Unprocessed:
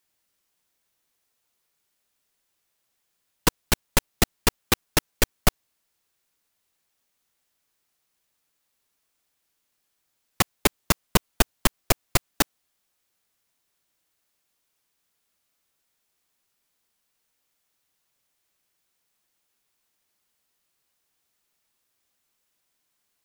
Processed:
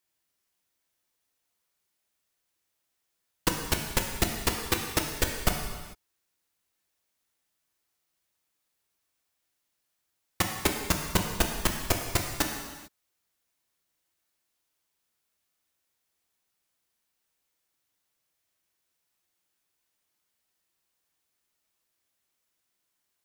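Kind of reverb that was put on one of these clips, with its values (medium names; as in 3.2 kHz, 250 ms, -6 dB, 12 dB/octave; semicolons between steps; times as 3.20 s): gated-style reverb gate 470 ms falling, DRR 2 dB; trim -6 dB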